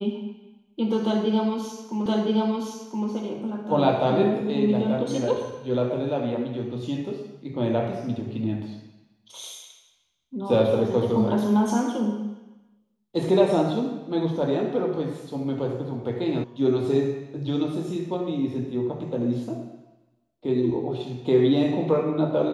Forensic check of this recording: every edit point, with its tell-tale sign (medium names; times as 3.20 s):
2.06 s: repeat of the last 1.02 s
16.44 s: sound stops dead